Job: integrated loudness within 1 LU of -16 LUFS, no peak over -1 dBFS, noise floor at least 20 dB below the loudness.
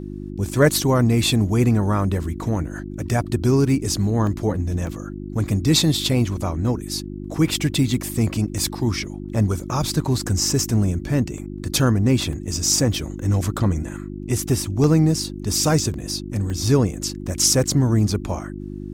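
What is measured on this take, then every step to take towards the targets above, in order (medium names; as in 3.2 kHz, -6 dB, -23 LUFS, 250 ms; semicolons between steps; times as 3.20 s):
dropouts 8; longest dropout 1.6 ms; hum 50 Hz; highest harmonic 350 Hz; hum level -30 dBFS; loudness -21.0 LUFS; peak level -4.5 dBFS; loudness target -16.0 LUFS
-> interpolate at 4.27/4.87/8.58/11.38/12.33/14.84/15.94/16.50 s, 1.6 ms; de-hum 50 Hz, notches 7; trim +5 dB; peak limiter -1 dBFS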